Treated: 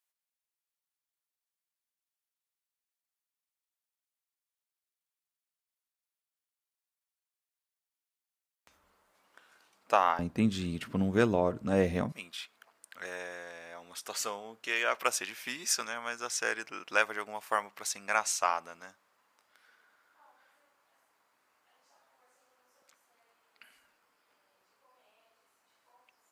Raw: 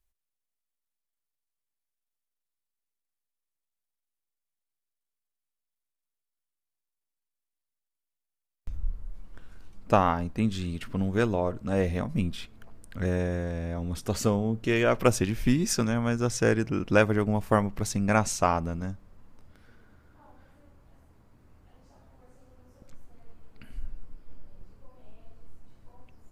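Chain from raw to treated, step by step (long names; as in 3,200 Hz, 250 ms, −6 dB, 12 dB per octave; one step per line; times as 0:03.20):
high-pass filter 730 Hz 12 dB per octave, from 0:10.19 130 Hz, from 0:12.12 1,000 Hz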